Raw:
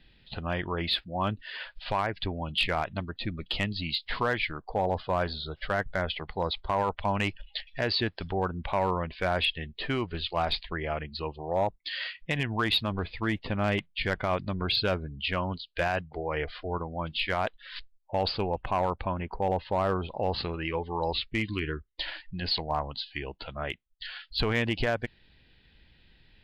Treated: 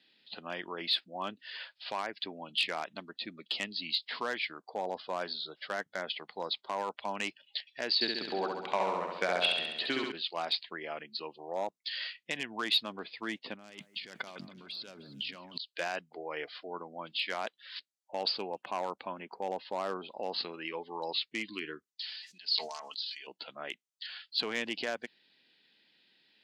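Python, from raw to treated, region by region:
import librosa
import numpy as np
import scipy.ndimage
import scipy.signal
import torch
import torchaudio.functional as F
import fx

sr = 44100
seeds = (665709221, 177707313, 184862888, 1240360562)

y = fx.chain(x, sr, fx.high_shelf(hz=7000.0, db=-5.5),
    fx.transient(attack_db=7, sustain_db=-3),
    fx.room_flutter(wall_m=11.6, rt60_s=1.1), at=(7.94, 10.12))
y = fx.chain(y, sr, fx.bass_treble(bass_db=7, treble_db=10),
    fx.over_compress(threshold_db=-36.0, ratio=-1.0),
    fx.echo_alternate(ms=154, hz=1900.0, feedback_pct=61, wet_db=-13.0), at=(13.54, 15.58))
y = fx.chain(y, sr, fx.bandpass_q(hz=5800.0, q=2.0),
    fx.comb(ms=4.6, depth=0.67),
    fx.sustainer(db_per_s=33.0), at=(21.92, 23.27))
y = scipy.signal.sosfilt(scipy.signal.butter(4, 220.0, 'highpass', fs=sr, output='sos'), y)
y = fx.peak_eq(y, sr, hz=6400.0, db=12.0, octaves=1.7)
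y = y * librosa.db_to_amplitude(-8.0)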